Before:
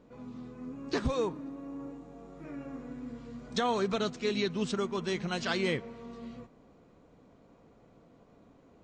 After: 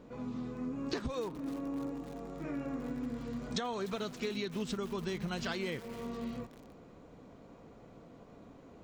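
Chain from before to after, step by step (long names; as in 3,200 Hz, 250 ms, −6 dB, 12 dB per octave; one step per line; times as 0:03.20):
0:04.68–0:05.54: low-shelf EQ 120 Hz +12 dB
downward compressor 12 to 1, threshold −38 dBFS, peak gain reduction 14 dB
feedback echo at a low word length 299 ms, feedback 80%, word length 7 bits, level −15 dB
level +5 dB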